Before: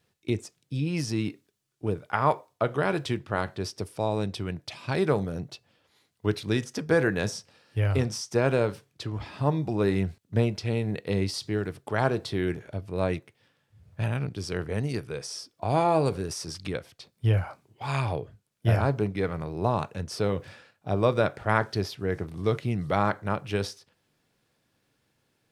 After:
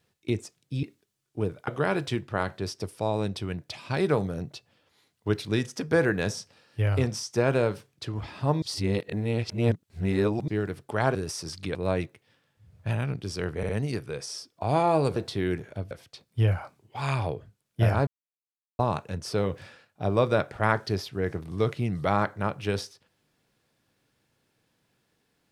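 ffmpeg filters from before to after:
-filter_complex "[0:a]asplit=13[a][b][c][d][e][f][g][h][i][j][k][l][m];[a]atrim=end=0.832[n];[b]atrim=start=1.288:end=2.142[o];[c]atrim=start=2.658:end=9.602[p];[d]atrim=start=9.598:end=11.462,asetpts=PTS-STARTPTS,areverse[q];[e]atrim=start=11.458:end=12.132[r];[f]atrim=start=16.168:end=16.772[s];[g]atrim=start=12.878:end=14.762[t];[h]atrim=start=14.698:end=14.762[u];[i]atrim=start=14.698:end=16.172[v];[j]atrim=start=12.128:end=12.882[w];[k]atrim=start=16.768:end=18.93,asetpts=PTS-STARTPTS,afade=t=out:st=2.158:d=0.004:c=hsin[x];[l]atrim=start=18.93:end=19.65,asetpts=PTS-STARTPTS,volume=0[y];[m]atrim=start=19.65,asetpts=PTS-STARTPTS,afade=t=in:d=0.004:c=hsin[z];[n][o]acrossfade=d=0.004:c1=hsin:c2=hsin[aa];[aa][p]acrossfade=d=0.004:c1=hsin:c2=hsin[ab];[ab][q]acrossfade=d=0.004:c1=hsin:c2=hsin[ac];[ac][r]acrossfade=d=0.004:c1=hsin:c2=hsin[ad];[ad][s]acrossfade=d=0.004:c1=hsin:c2=hsin[ae];[ae][t]acrossfade=d=0.004:c1=hsin:c2=hsin[af];[af][u]acrossfade=d=0.004:c1=hsin:c2=hsin[ag];[ag][v]acrossfade=d=0.004:c1=hsin:c2=hsin[ah];[ah][w]acrossfade=d=0.004:c1=hsin:c2=hsin[ai];[x][y][z]concat=n=3:v=0:a=1[aj];[ai][aj]acrossfade=d=0.004:c1=hsin:c2=hsin"

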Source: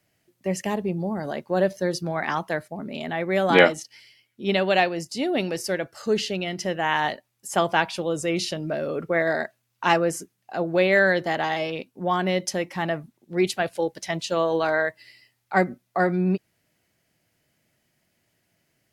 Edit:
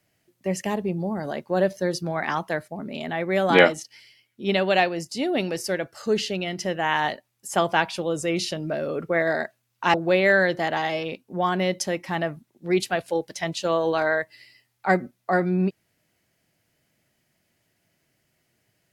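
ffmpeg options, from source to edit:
-filter_complex "[0:a]asplit=2[a][b];[a]atrim=end=9.942[c];[b]atrim=start=10.608[d];[c][d]acrossfade=d=0.004:c1=hsin:c2=hsin"

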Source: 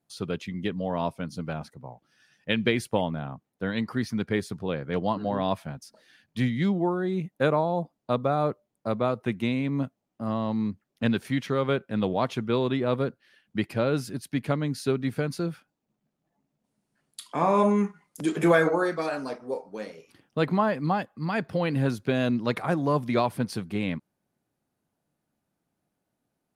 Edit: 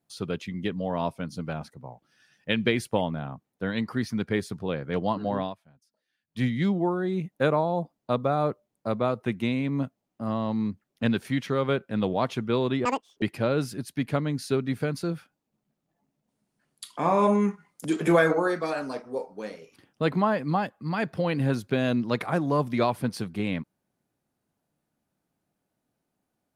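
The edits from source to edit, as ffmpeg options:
-filter_complex "[0:a]asplit=5[a][b][c][d][e];[a]atrim=end=5.55,asetpts=PTS-STARTPTS,afade=t=out:st=5.38:d=0.17:silence=0.0794328[f];[b]atrim=start=5.55:end=6.27,asetpts=PTS-STARTPTS,volume=-22dB[g];[c]atrim=start=6.27:end=12.854,asetpts=PTS-STARTPTS,afade=t=in:d=0.17:silence=0.0794328[h];[d]atrim=start=12.85:end=13.58,asetpts=PTS-STARTPTS,asetrate=86877,aresample=44100[i];[e]atrim=start=13.576[j];[f][g][h]concat=n=3:v=0:a=1[k];[k][i]acrossfade=d=0.004:c1=hsin:c2=hsin[l];[l][j]acrossfade=d=0.004:c1=hsin:c2=hsin"

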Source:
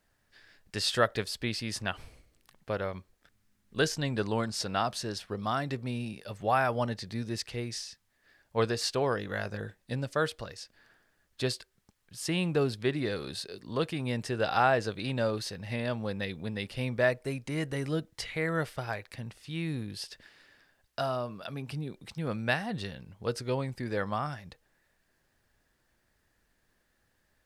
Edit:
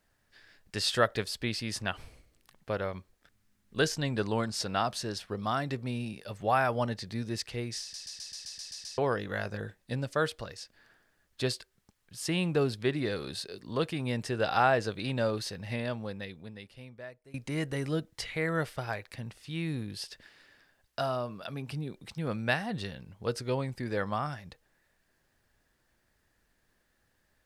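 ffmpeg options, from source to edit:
-filter_complex "[0:a]asplit=11[a][b][c][d][e][f][g][h][i][j][k];[a]atrim=end=7.942[l];[b]atrim=start=7.808:end=7.942[m];[c]atrim=start=7.808:end=7.942[n];[d]atrim=start=7.808:end=7.942[o];[e]atrim=start=7.808:end=7.942[p];[f]atrim=start=7.808:end=7.942[q];[g]atrim=start=7.808:end=7.942[r];[h]atrim=start=7.808:end=7.942[s];[i]atrim=start=7.808:end=7.942[t];[j]atrim=start=8.978:end=17.34,asetpts=PTS-STARTPTS,afade=t=out:st=6.732:d=1.63:c=qua:silence=0.0841395[u];[k]atrim=start=17.34,asetpts=PTS-STARTPTS,afade=t=in:d=0.004:c=hsin:silence=0.0841395[v];[l][m]acrossfade=d=0.004:c1=hsin:c2=hsin[w];[w][n]acrossfade=d=0.004:c1=hsin:c2=hsin[x];[x][o]acrossfade=d=0.004:c1=hsin:c2=hsin[y];[y][p]acrossfade=d=0.004:c1=hsin:c2=hsin[z];[z][q]acrossfade=d=0.004:c1=hsin:c2=hsin[aa];[aa][r]acrossfade=d=0.004:c1=hsin:c2=hsin[ab];[ab][s]acrossfade=d=0.004:c1=hsin:c2=hsin[ac];[ac][t]acrossfade=d=0.004:c1=hsin:c2=hsin[ad];[u][v]concat=n=2:v=0:a=1[ae];[ad][ae]acrossfade=d=0.004:c1=hsin:c2=hsin"

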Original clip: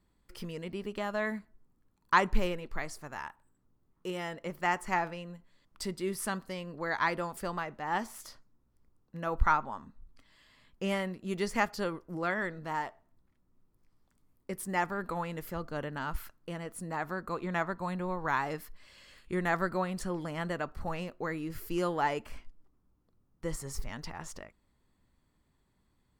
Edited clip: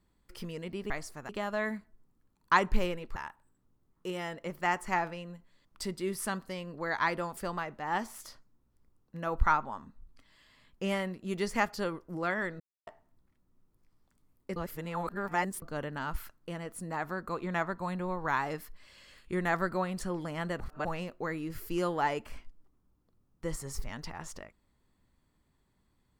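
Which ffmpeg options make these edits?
-filter_complex "[0:a]asplit=10[a][b][c][d][e][f][g][h][i][j];[a]atrim=end=0.902[k];[b]atrim=start=2.768:end=3.162[l];[c]atrim=start=0.898:end=2.772[m];[d]atrim=start=3.158:end=12.6,asetpts=PTS-STARTPTS,afade=t=out:st=9.438:d=0.004:c=hsin[n];[e]atrim=start=12.6:end=12.87,asetpts=PTS-STARTPTS,volume=0[o];[f]atrim=start=12.87:end=14.562,asetpts=PTS-STARTPTS,afade=t=in:d=0.004:c=hsin[p];[g]atrim=start=14.558:end=15.622,asetpts=PTS-STARTPTS,areverse[q];[h]atrim=start=15.618:end=20.602[r];[i]atrim=start=20.598:end=20.852,asetpts=PTS-STARTPTS,areverse[s];[j]atrim=start=20.848[t];[k][l]acrossfade=d=0.004:c1=hsin:c2=hsin[u];[u][m]acrossfade=d=0.004:c1=hsin:c2=hsin[v];[n][o][p]concat=n=3:v=0:a=1[w];[v][w]acrossfade=d=0.004:c1=hsin:c2=hsin[x];[x][q]acrossfade=d=0.004:c1=hsin:c2=hsin[y];[y][r]acrossfade=d=0.004:c1=hsin:c2=hsin[z];[z][s]acrossfade=d=0.004:c1=hsin:c2=hsin[aa];[aa][t]acrossfade=d=0.004:c1=hsin:c2=hsin"

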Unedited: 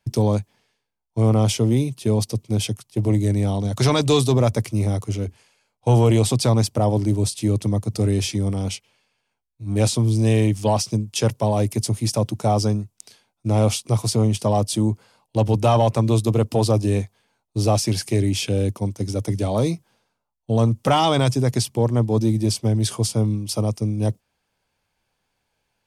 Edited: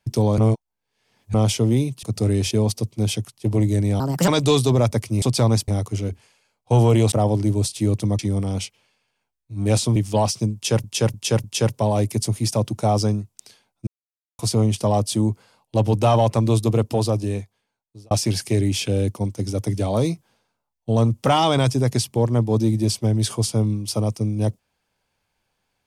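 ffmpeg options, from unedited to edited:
-filter_complex "[0:a]asplit=18[a][b][c][d][e][f][g][h][i][j][k][l][m][n][o][p][q][r];[a]atrim=end=0.382[s];[b]atrim=start=0.378:end=1.342,asetpts=PTS-STARTPTS,areverse[t];[c]atrim=start=1.338:end=2.032[u];[d]atrim=start=7.808:end=8.292[v];[e]atrim=start=2.028:end=3.524[w];[f]atrim=start=3.52:end=3.9,asetpts=PTS-STARTPTS,asetrate=59976,aresample=44100,atrim=end_sample=12322,asetpts=PTS-STARTPTS[x];[g]atrim=start=3.896:end=4.842[y];[h]atrim=start=6.278:end=6.742[z];[i]atrim=start=4.838:end=6.282[aa];[j]atrim=start=6.738:end=7.812[ab];[k]atrim=start=8.288:end=10.062[ac];[l]atrim=start=10.468:end=11.352[ad];[m]atrim=start=11.048:end=11.352[ae];[n]atrim=start=11.048:end=11.352[af];[o]atrim=start=11.048:end=13.48,asetpts=PTS-STARTPTS,afade=t=out:st=2.428:d=0.004:c=hsin[ag];[p]atrim=start=13.48:end=14,asetpts=PTS-STARTPTS,volume=0[ah];[q]atrim=start=14:end=17.72,asetpts=PTS-STARTPTS,afade=t=in:d=0.004:c=hsin,afade=t=out:st=2.35:d=1.37[ai];[r]atrim=start=17.72,asetpts=PTS-STARTPTS,afade=t=in:d=0.004:c=hsin[aj];[s][t]acrossfade=d=0.004:c1=hsin:c2=hsin[ak];[ak][u]acrossfade=d=0.004:c1=hsin:c2=hsin[al];[al][v]acrossfade=d=0.004:c1=hsin:c2=hsin[am];[am][w]acrossfade=d=0.004:c1=hsin:c2=hsin[an];[an][x]acrossfade=d=0.004:c1=hsin:c2=hsin[ao];[ao][y]acrossfade=d=0.004:c1=hsin:c2=hsin[ap];[ap][z]acrossfade=d=0.004:c1=hsin:c2=hsin[aq];[aq][aa]acrossfade=d=0.004:c1=hsin:c2=hsin[ar];[ar][ab]acrossfade=d=0.004:c1=hsin:c2=hsin[as];[as][ac]acrossfade=d=0.004:c1=hsin:c2=hsin[at];[at][ad]acrossfade=d=0.004:c1=hsin:c2=hsin[au];[au][ae]acrossfade=d=0.004:c1=hsin:c2=hsin[av];[av][af]acrossfade=d=0.004:c1=hsin:c2=hsin[aw];[ag][ah][ai][aj]concat=n=4:v=0:a=1[ax];[aw][ax]acrossfade=d=0.004:c1=hsin:c2=hsin"

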